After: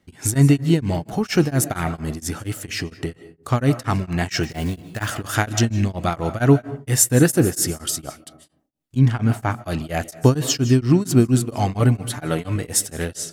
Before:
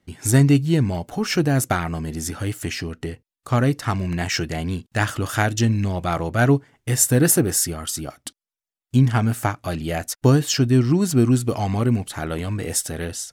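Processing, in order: 4.43–5.12 s: block-companded coder 5-bit; 8.98–9.65 s: treble shelf 7.3 kHz -> 4.8 kHz -10 dB; 11.79–12.56 s: comb 6.8 ms, depth 65%; on a send at -14.5 dB: reverberation RT60 0.60 s, pre-delay 115 ms; on the sum: tremolo of two beating tones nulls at 4.3 Hz; trim +3.5 dB

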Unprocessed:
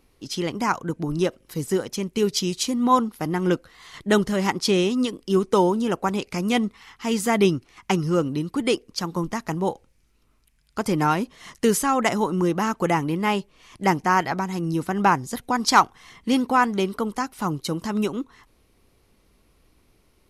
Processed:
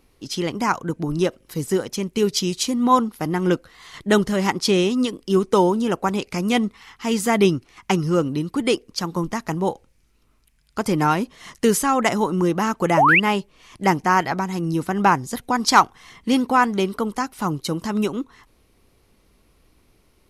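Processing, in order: painted sound rise, 12.97–13.20 s, 550–3000 Hz -16 dBFS; trim +2 dB

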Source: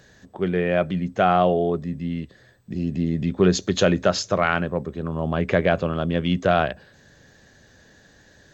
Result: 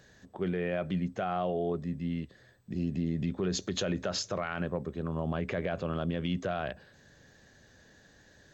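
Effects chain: peak limiter -16 dBFS, peak gain reduction 10.5 dB; trim -6 dB

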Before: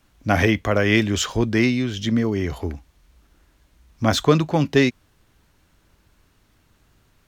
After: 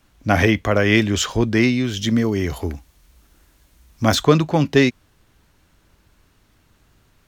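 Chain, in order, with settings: 1.84–4.15 s: treble shelf 6.3 kHz +9.5 dB; trim +2 dB

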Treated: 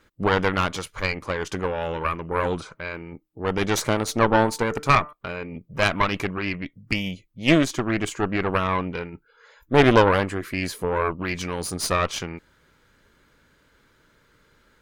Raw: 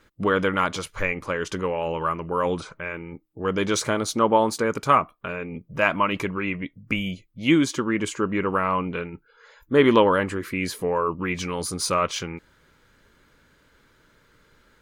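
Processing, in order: 3.96–5.13 s: de-hum 148.9 Hz, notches 14; Chebyshev shaper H 2 -7 dB, 6 -17 dB, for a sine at -3.5 dBFS; trim -1 dB

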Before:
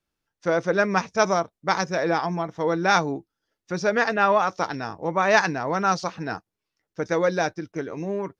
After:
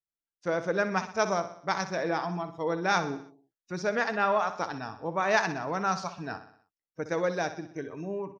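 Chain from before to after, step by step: spectral noise reduction 17 dB; on a send: feedback delay 62 ms, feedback 51%, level -12 dB; on the sum: trim -6.5 dB

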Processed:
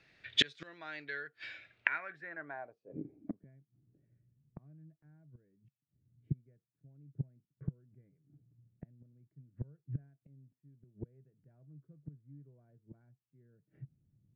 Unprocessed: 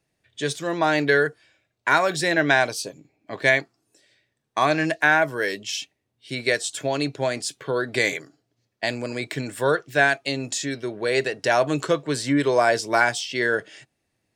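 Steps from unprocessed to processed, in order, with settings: high-order bell 1.8 kHz +9 dB 1.2 oct; inverted gate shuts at -20 dBFS, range -34 dB; low-pass sweep 4 kHz -> 150 Hz, 1.65–3.60 s; trim +4 dB

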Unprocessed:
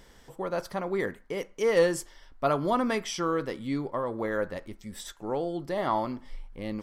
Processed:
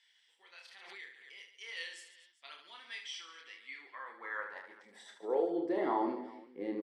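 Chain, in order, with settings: coarse spectral quantiser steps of 15 dB; tilt EQ -3.5 dB/octave; high-pass sweep 3.1 kHz -> 360 Hz, 3.32–5.71 s; cabinet simulation 260–9800 Hz, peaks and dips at 600 Hz -9 dB, 1.2 kHz -5 dB, 1.9 kHz +6 dB, 6.6 kHz -4 dB; on a send: reverse bouncing-ball echo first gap 30 ms, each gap 1.5×, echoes 5; 0.68–1.55 s: on the sum: swell ahead of each attack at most 37 dB/s; trim -7.5 dB

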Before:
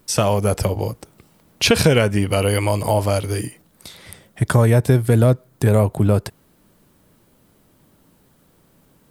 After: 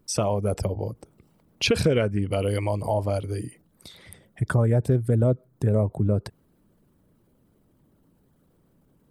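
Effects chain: resonances exaggerated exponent 1.5; loudspeaker Doppler distortion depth 0.15 ms; trim -6.5 dB

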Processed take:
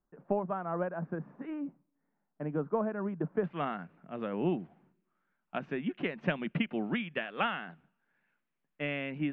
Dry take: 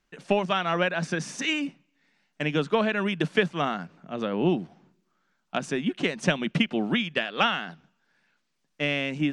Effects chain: low-pass 1.2 kHz 24 dB/octave, from 3.44 s 2.6 kHz; trim -7 dB

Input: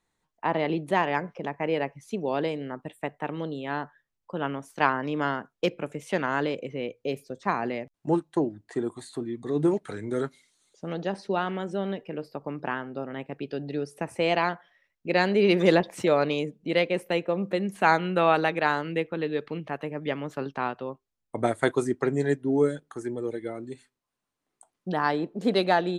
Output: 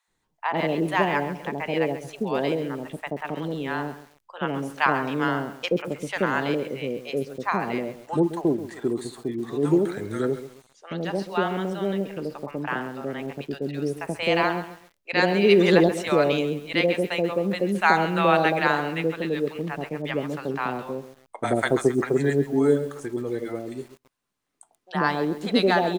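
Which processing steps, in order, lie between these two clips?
feedback comb 400 Hz, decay 0.21 s, harmonics all, mix 30%; bands offset in time highs, lows 80 ms, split 730 Hz; bit-crushed delay 134 ms, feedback 35%, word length 8-bit, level -12.5 dB; trim +6.5 dB

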